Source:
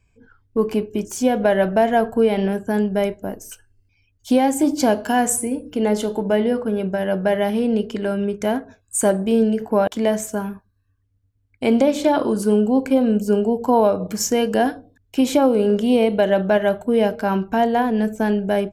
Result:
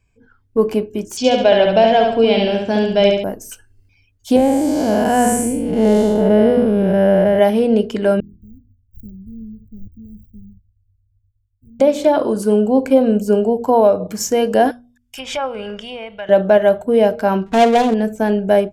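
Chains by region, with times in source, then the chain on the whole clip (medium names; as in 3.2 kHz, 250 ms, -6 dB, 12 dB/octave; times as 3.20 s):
1.17–3.24 s: low-pass 7.2 kHz 24 dB/octave + high-order bell 3.6 kHz +12.5 dB 1.3 oct + feedback delay 70 ms, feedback 43%, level -3.5 dB
4.36–7.39 s: spectral blur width 260 ms + bass shelf 120 Hz +11.5 dB + tape noise reduction on one side only decoder only
8.20–11.80 s: median filter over 41 samples + inverse Chebyshev band-stop 760–8100 Hz, stop band 80 dB + peaking EQ 160 Hz -13 dB 1.2 oct
14.71–16.29 s: low-pass that closes with the level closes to 2.2 kHz, closed at -12 dBFS + Butterworth band-stop 4.1 kHz, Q 7.8 + amplifier tone stack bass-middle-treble 10-0-10
17.46–17.94 s: dead-time distortion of 0.24 ms + distance through air 58 m + comb 4.3 ms, depth 56%
whole clip: de-hum 80.68 Hz, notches 4; dynamic bell 580 Hz, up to +6 dB, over -29 dBFS, Q 1.8; level rider; trim -1 dB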